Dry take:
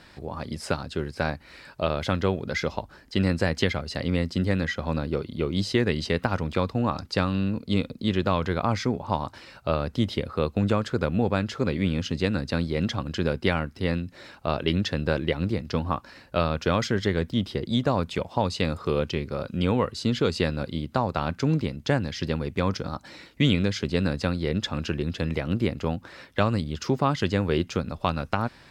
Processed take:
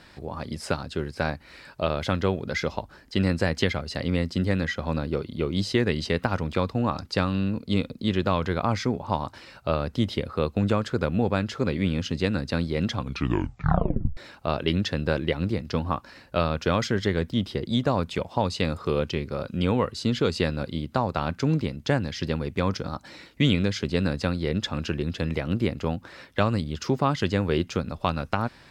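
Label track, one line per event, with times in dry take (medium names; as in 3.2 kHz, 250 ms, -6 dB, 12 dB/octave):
12.950000	12.950000	tape stop 1.22 s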